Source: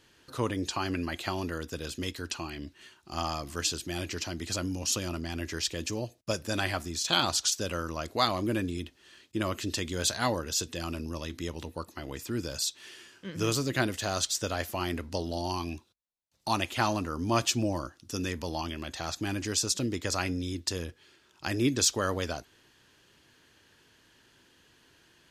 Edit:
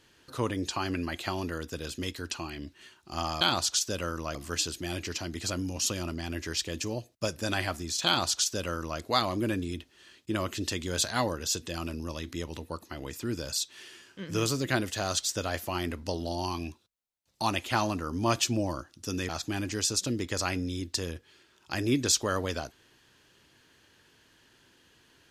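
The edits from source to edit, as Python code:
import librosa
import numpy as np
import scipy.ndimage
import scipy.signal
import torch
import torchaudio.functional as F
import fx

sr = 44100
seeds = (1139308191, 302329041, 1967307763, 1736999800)

y = fx.edit(x, sr, fx.duplicate(start_s=7.12, length_s=0.94, to_s=3.41),
    fx.cut(start_s=18.35, length_s=0.67), tone=tone)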